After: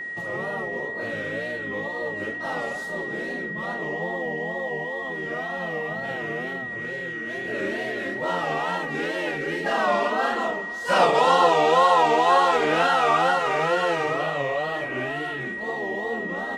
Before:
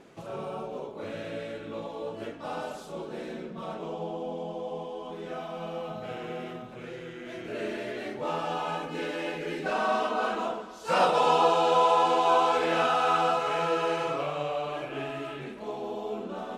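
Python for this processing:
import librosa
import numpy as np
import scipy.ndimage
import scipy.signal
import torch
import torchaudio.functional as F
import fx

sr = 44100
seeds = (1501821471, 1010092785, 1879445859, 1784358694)

y = fx.wow_flutter(x, sr, seeds[0], rate_hz=2.1, depth_cents=140.0)
y = y + 10.0 ** (-35.0 / 20.0) * np.sin(2.0 * np.pi * 1900.0 * np.arange(len(y)) / sr)
y = y * librosa.db_to_amplitude(4.5)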